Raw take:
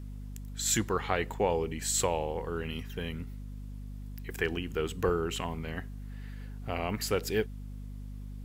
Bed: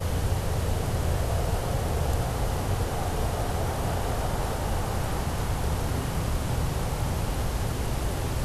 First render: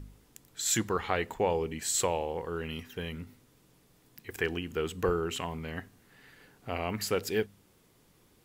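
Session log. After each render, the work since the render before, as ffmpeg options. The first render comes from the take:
-af "bandreject=f=50:t=h:w=4,bandreject=f=100:t=h:w=4,bandreject=f=150:t=h:w=4,bandreject=f=200:t=h:w=4,bandreject=f=250:t=h:w=4"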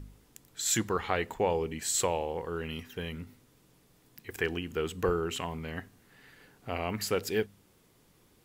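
-af anull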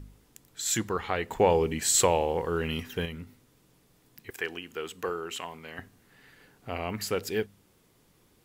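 -filter_complex "[0:a]asettb=1/sr,asplit=3[a][b][c];[a]atrim=end=1.314[d];[b]atrim=start=1.31:end=3.06,asetpts=PTS-STARTPTS,afade=t=in:d=0.004:c=qsin,afade=t=out:st=1.746:d=0.004:c=qsin,acontrast=59[e];[c]atrim=start=3.056[f];[d][e]acrossfade=d=0.004:c1=hsin:c2=qsin[g];[g][f]acrossfade=d=0.004:c1=qsin:c2=hsin,asettb=1/sr,asplit=3[h][i][j];[h]atrim=end=4.304[k];[i]atrim=start=4.3:end=5.79,asetpts=PTS-STARTPTS,afade=t=in:d=0.004:c=qsin,afade=t=out:st=1.486:d=0.004:c=qsin,highpass=f=580:p=1[l];[j]atrim=start=5.786[m];[k][l]acrossfade=d=0.004:c1=hsin:c2=qsin[n];[n][m]acrossfade=d=0.004:c1=qsin:c2=hsin"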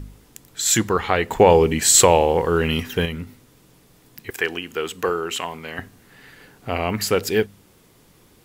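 -af "volume=10dB,alimiter=limit=-1dB:level=0:latency=1"

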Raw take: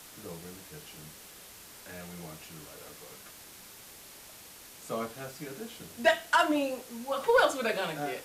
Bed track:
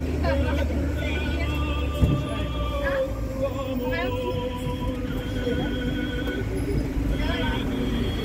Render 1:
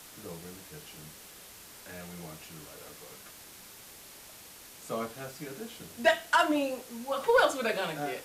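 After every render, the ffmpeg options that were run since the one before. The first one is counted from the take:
-af anull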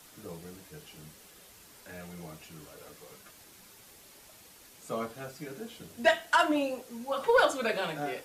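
-af "afftdn=nr=6:nf=-51"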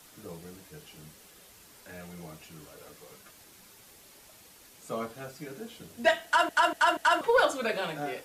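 -filter_complex "[0:a]asplit=5[a][b][c][d][e];[a]atrim=end=6.492[f];[b]atrim=start=6.248:end=6.492[g];[c]atrim=start=6.248:end=6.492[h];[d]atrim=start=6.248:end=6.492[i];[e]atrim=start=7.208[j];[f][g]acrossfade=d=0.004:c1=hsin:c2=hsin[k];[k][h]acrossfade=d=0.004:c1=hsin:c2=hsin[l];[l][i]acrossfade=d=0.004:c1=hsin:c2=hsin[m];[m][j]acrossfade=d=0.004:c1=hsin:c2=hsin"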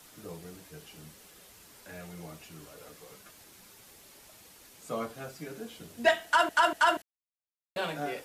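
-filter_complex "[0:a]asplit=3[a][b][c];[a]atrim=end=7.02,asetpts=PTS-STARTPTS,afade=t=out:st=7.016:d=0.004:c=hsin[d];[b]atrim=start=7.02:end=7.76,asetpts=PTS-STARTPTS,volume=0[e];[c]atrim=start=7.76,asetpts=PTS-STARTPTS,afade=t=in:d=0.004:c=hsin[f];[d][e][f]concat=n=3:v=0:a=1"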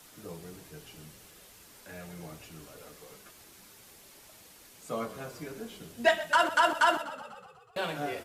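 -filter_complex "[0:a]asplit=8[a][b][c][d][e][f][g][h];[b]adelay=123,afreqshift=-35,volume=-14.5dB[i];[c]adelay=246,afreqshift=-70,volume=-18.5dB[j];[d]adelay=369,afreqshift=-105,volume=-22.5dB[k];[e]adelay=492,afreqshift=-140,volume=-26.5dB[l];[f]adelay=615,afreqshift=-175,volume=-30.6dB[m];[g]adelay=738,afreqshift=-210,volume=-34.6dB[n];[h]adelay=861,afreqshift=-245,volume=-38.6dB[o];[a][i][j][k][l][m][n][o]amix=inputs=8:normalize=0"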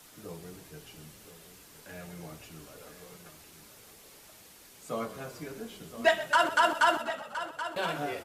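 -af "aecho=1:1:1018:0.251"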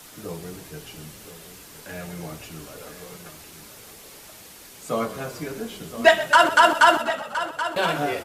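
-af "volume=9dB"

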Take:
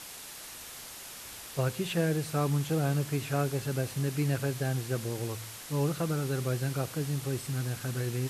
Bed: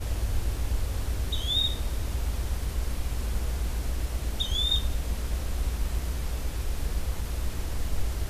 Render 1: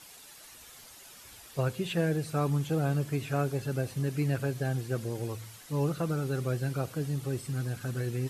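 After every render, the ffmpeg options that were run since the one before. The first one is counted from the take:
-af "afftdn=nr=9:nf=-45"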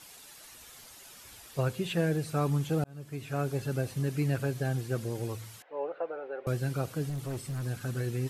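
-filter_complex "[0:a]asettb=1/sr,asplit=3[a][b][c];[a]atrim=end=5.624[d];[b]atrim=start=5.62:end=6.47,asetpts=PTS-STARTPTS,afade=t=in:d=0.004:c=qsin,afade=t=out:st=0.846:d=0.004:c=qsin,highpass=f=460:w=0.5412,highpass=f=460:w=1.3066,equalizer=f=540:t=q:w=4:g=5,equalizer=f=770:t=q:w=4:g=3,equalizer=f=1.2k:t=q:w=4:g=-9,equalizer=f=2k:t=q:w=4:g=-4,lowpass=f=2.1k:w=0.5412,lowpass=f=2.1k:w=1.3066[e];[c]atrim=start=6.466[f];[d][e]acrossfade=d=0.004:c1=hsin:c2=qsin[g];[g][f]acrossfade=d=0.004:c1=qsin:c2=hsin,asettb=1/sr,asplit=3[h][i][j];[h]atrim=end=7.094[k];[i]atrim=start=7.09:end=7.65,asetpts=PTS-STARTPTS,afade=t=in:d=0.004:c=qsin,afade=t=out:st=0.556:d=0.004:c=qsin,asoftclip=type=hard:threshold=-31.5dB[l];[j]atrim=start=7.646[m];[k][l]acrossfade=d=0.004:c1=hsin:c2=qsin[n];[n][m]acrossfade=d=0.004:c1=qsin:c2=hsin,asplit=2[o][p];[o]atrim=end=2.84,asetpts=PTS-STARTPTS,afade=t=out:st=2.836:d=0.004:c=hsin[q];[p]atrim=start=2.84,asetpts=PTS-STARTPTS,afade=t=in:d=0.73[r];[q][r]concat=n=2:v=0:a=1"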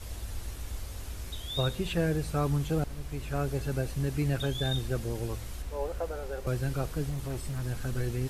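-filter_complex "[1:a]volume=-10dB[a];[0:a][a]amix=inputs=2:normalize=0"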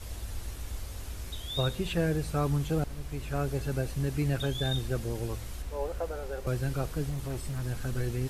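-af anull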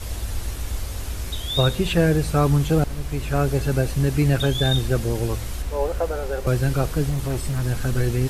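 -af "volume=10dB"

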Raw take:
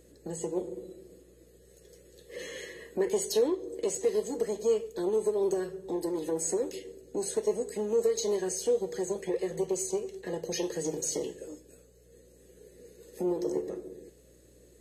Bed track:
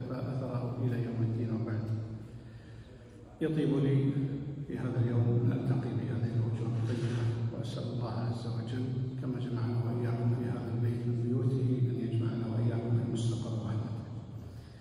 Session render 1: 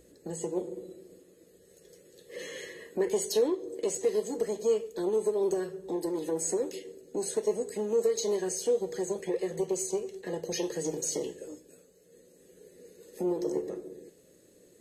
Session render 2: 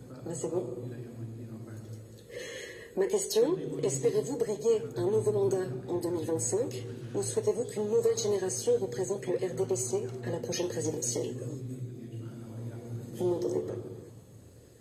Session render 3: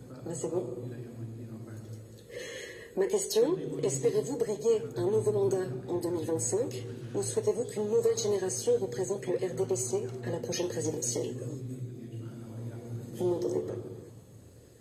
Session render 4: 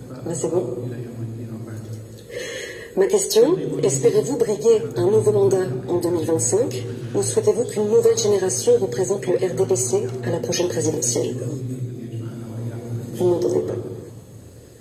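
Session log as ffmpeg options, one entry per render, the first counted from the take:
-af "bandreject=f=60:t=h:w=4,bandreject=f=120:t=h:w=4"
-filter_complex "[1:a]volume=-9.5dB[a];[0:a][a]amix=inputs=2:normalize=0"
-af anull
-af "volume=11dB"

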